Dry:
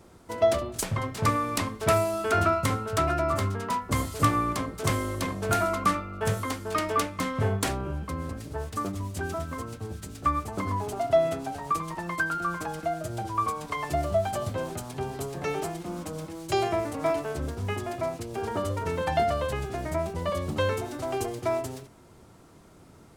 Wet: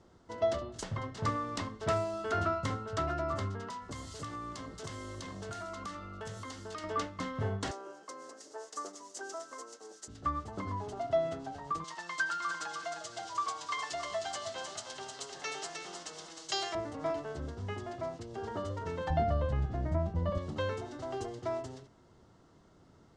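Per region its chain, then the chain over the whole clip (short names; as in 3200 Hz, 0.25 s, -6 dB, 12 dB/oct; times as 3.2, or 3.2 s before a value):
3.67–6.84 high shelf 3300 Hz +11 dB + compressor 4:1, threshold -31 dBFS
7.71–10.08 HPF 370 Hz 24 dB/oct + resonant high shelf 4600 Hz +10 dB, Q 1.5
11.84–16.75 weighting filter ITU-R 468 + lo-fi delay 0.309 s, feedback 35%, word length 8-bit, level -5.5 dB
19.1–20.38 tilt -3 dB/oct + notch 400 Hz, Q 5.7
whole clip: LPF 6800 Hz 24 dB/oct; notch 2400 Hz, Q 6.2; gain -8 dB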